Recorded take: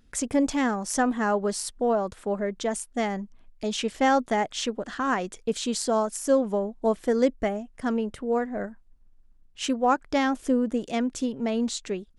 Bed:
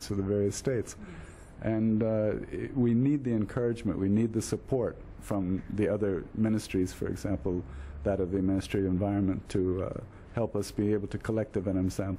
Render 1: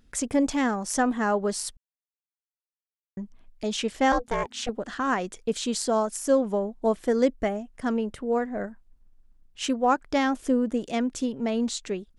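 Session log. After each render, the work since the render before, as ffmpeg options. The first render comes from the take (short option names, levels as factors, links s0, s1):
-filter_complex "[0:a]asettb=1/sr,asplit=3[s0][s1][s2];[s0]atrim=end=4.124[s3];[s1]atrim=start=4.12:end=4.69,asetpts=PTS-STARTPTS,afade=t=in:d=0.004:c=qsin,afade=t=out:st=0.566:d=0.004:c=qsin,aeval=exprs='val(0)*sin(2*PI*240*n/s)':c=same[s4];[s2]atrim=start=4.686[s5];[s3][s4]acrossfade=d=0.004:c1=hsin:c2=qsin[s6];[s6][s5]acrossfade=d=0.004:c1=qsin:c2=hsin,asplit=3[s7][s8][s9];[s7]atrim=end=1.77,asetpts=PTS-STARTPTS,afade=t=out:st=1.766:d=0.004:c=hsin[s10];[s8]atrim=start=1.77:end=3.17,asetpts=PTS-STARTPTS,volume=0[s11];[s9]atrim=start=3.17,asetpts=PTS-STARTPTS,afade=t=in:d=0.004:c=hsin[s12];[s10][s11][s12]concat=n=3:v=0:a=1"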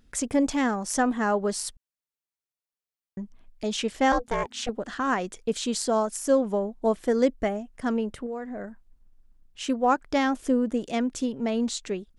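-filter_complex "[0:a]asettb=1/sr,asplit=3[s0][s1][s2];[s0]atrim=end=8.264[s3];[s1]atrim=start=8.26:end=9.69,asetpts=PTS-STARTPTS,afade=t=in:d=0.004:c=qsin,afade=t=out:st=1.426:d=0.004:c=qsin,acompressor=threshold=0.0282:ratio=5:attack=3.2:release=140:knee=1:detection=peak[s4];[s2]atrim=start=9.686[s5];[s3][s4]acrossfade=d=0.004:c1=hsin:c2=qsin[s6];[s6][s5]acrossfade=d=0.004:c1=qsin:c2=hsin"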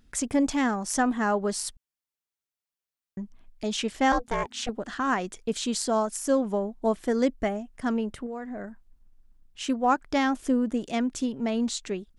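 -af "equalizer=f=500:w=3.3:g=-4"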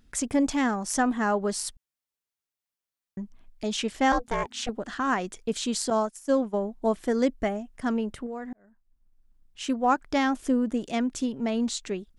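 -filter_complex "[0:a]asettb=1/sr,asplit=3[s0][s1][s2];[s0]atrim=end=5.904[s3];[s1]atrim=start=5.9:end=6.56,asetpts=PTS-STARTPTS,afade=t=in:d=0.004:c=qsin,afade=t=out:st=0.656:d=0.004:c=qsin,agate=range=0.0224:threshold=0.0447:ratio=3:release=100:detection=peak[s4];[s2]atrim=start=6.556[s5];[s3][s4]acrossfade=d=0.004:c1=hsin:c2=qsin[s6];[s6][s5]acrossfade=d=0.004:c1=qsin:c2=hsin,asplit=2[s7][s8];[s7]atrim=end=8.53,asetpts=PTS-STARTPTS,afade=t=out:st=8.526:d=0.004:c=hsin[s9];[s8]atrim=start=8.53,asetpts=PTS-STARTPTS,afade=t=in:d=1.24[s10];[s9][s10]concat=n=2:v=0:a=1"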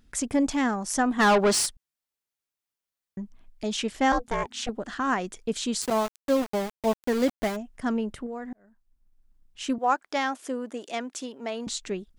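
-filter_complex "[0:a]asplit=3[s0][s1][s2];[s0]afade=t=out:st=1.18:d=0.02[s3];[s1]asplit=2[s4][s5];[s5]highpass=f=720:p=1,volume=15.8,asoftclip=type=tanh:threshold=0.237[s6];[s4][s6]amix=inputs=2:normalize=0,lowpass=f=5600:p=1,volume=0.501,afade=t=in:st=1.18:d=0.02,afade=t=out:st=1.65:d=0.02[s7];[s2]afade=t=in:st=1.65:d=0.02[s8];[s3][s7][s8]amix=inputs=3:normalize=0,asplit=3[s9][s10][s11];[s9]afade=t=out:st=5.81:d=0.02[s12];[s10]aeval=exprs='val(0)*gte(abs(val(0)),0.0335)':c=same,afade=t=in:st=5.81:d=0.02,afade=t=out:st=7.55:d=0.02[s13];[s11]afade=t=in:st=7.55:d=0.02[s14];[s12][s13][s14]amix=inputs=3:normalize=0,asettb=1/sr,asplit=3[s15][s16][s17];[s15]atrim=end=9.784[s18];[s16]atrim=start=9.78:end=11.67,asetpts=PTS-STARTPTS,afade=t=in:d=0.004:c=qsin,afade=t=out:st=1.886:d=0.004:c=qsin,highpass=440[s19];[s17]atrim=start=11.666[s20];[s18][s19]acrossfade=d=0.004:c1=hsin:c2=qsin[s21];[s21][s20]acrossfade=d=0.004:c1=qsin:c2=hsin"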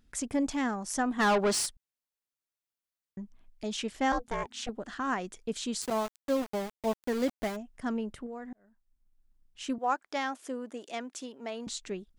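-af "volume=0.531"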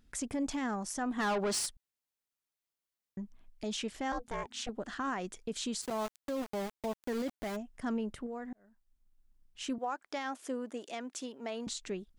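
-af "alimiter=level_in=1.41:limit=0.0631:level=0:latency=1:release=92,volume=0.708"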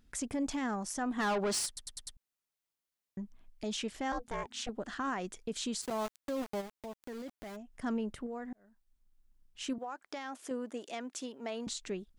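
-filter_complex "[0:a]asplit=3[s0][s1][s2];[s0]afade=t=out:st=6.6:d=0.02[s3];[s1]acompressor=threshold=0.002:ratio=1.5:attack=3.2:release=140:knee=1:detection=peak,afade=t=in:st=6.6:d=0.02,afade=t=out:st=7.76:d=0.02[s4];[s2]afade=t=in:st=7.76:d=0.02[s5];[s3][s4][s5]amix=inputs=3:normalize=0,asettb=1/sr,asplit=3[s6][s7][s8];[s6]atrim=end=9.734[s9];[s7]atrim=start=9.73:end=10.51,asetpts=PTS-STARTPTS,afade=t=in:d=0.004:c=qsin,afade=t=out:st=0.776:d=0.004:c=qsin,acompressor=threshold=0.0158:ratio=6:attack=3.2:release=140:knee=1:detection=peak[s10];[s8]atrim=start=10.506[s11];[s9][s10]acrossfade=d=0.004:c1=hsin:c2=qsin[s12];[s12][s11]acrossfade=d=0.004:c1=qsin:c2=hsin,asplit=6[s13][s14][s15][s16][s17][s18];[s13]atrim=end=1.772[s19];[s14]atrim=start=1.668:end=1.772[s20];[s15]atrim=start=1.668:end=1.772[s21];[s16]atrim=start=1.668:end=1.772[s22];[s17]atrim=start=1.668:end=1.772[s23];[s18]atrim=start=2.168[s24];[s19][s20]acrossfade=d=0.004:c1=hsin:c2=hsin[s25];[s25][s21]acrossfade=d=0.004:c1=hsin:c2=hsin[s26];[s26][s22]acrossfade=d=0.004:c1=hsin:c2=hsin[s27];[s27][s23]acrossfade=d=0.004:c1=hsin:c2=hsin[s28];[s28][s24]acrossfade=d=0.004:c1=hsin:c2=hsin"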